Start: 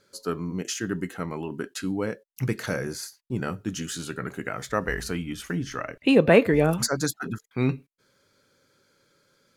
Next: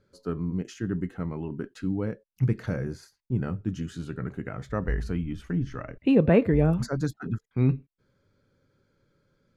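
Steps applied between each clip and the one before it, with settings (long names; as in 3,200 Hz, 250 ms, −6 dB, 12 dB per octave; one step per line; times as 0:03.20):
RIAA equalisation playback
level −7 dB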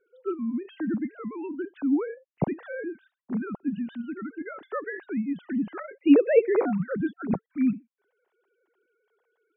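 three sine waves on the formant tracks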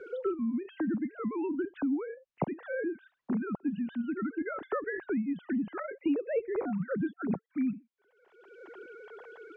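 high-frequency loss of the air 130 metres
multiband upward and downward compressor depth 100%
level −4 dB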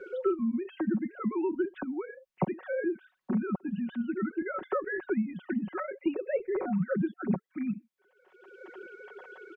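comb filter 5.4 ms, depth 73%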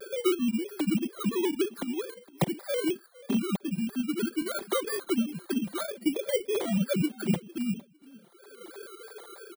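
samples in bit-reversed order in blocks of 16 samples
repeating echo 456 ms, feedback 20%, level −21 dB
pitch modulation by a square or saw wave square 3.1 Hz, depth 100 cents
level +2 dB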